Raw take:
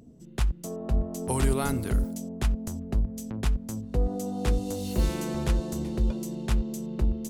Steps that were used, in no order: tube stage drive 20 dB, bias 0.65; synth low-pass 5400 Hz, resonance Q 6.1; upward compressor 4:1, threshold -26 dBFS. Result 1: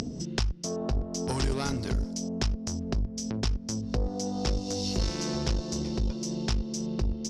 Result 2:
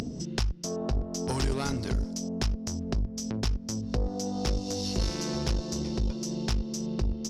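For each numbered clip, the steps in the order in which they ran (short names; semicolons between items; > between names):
tube stage > upward compressor > synth low-pass; synth low-pass > tube stage > upward compressor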